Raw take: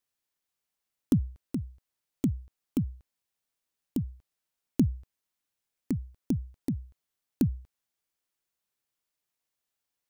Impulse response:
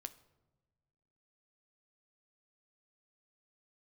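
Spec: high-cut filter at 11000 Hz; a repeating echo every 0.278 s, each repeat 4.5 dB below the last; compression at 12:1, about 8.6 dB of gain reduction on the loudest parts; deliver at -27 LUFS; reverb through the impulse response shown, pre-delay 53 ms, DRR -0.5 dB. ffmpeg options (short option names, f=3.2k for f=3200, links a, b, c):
-filter_complex "[0:a]lowpass=11k,acompressor=threshold=-27dB:ratio=12,aecho=1:1:278|556|834|1112|1390|1668|1946|2224|2502:0.596|0.357|0.214|0.129|0.0772|0.0463|0.0278|0.0167|0.01,asplit=2[a][b];[1:a]atrim=start_sample=2205,adelay=53[c];[b][c]afir=irnorm=-1:irlink=0,volume=5dB[d];[a][d]amix=inputs=2:normalize=0,volume=7.5dB"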